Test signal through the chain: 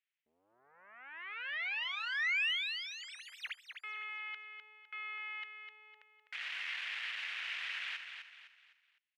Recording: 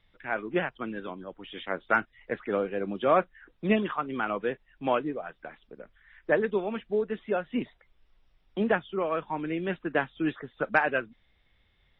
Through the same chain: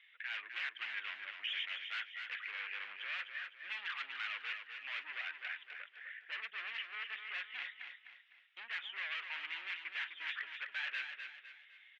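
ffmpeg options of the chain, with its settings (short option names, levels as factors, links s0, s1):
-filter_complex "[0:a]areverse,acompressor=threshold=0.0251:ratio=8,areverse,aeval=exprs='(tanh(70.8*val(0)+0.8)-tanh(0.8))/70.8':c=same,aeval=exprs='0.0237*sin(PI/2*2*val(0)/0.0237)':c=same,asuperpass=centerf=2300:order=4:qfactor=1.7,asplit=2[s0][s1];[s1]aecho=0:1:254|508|762|1016:0.447|0.17|0.0645|0.0245[s2];[s0][s2]amix=inputs=2:normalize=0,volume=2.11"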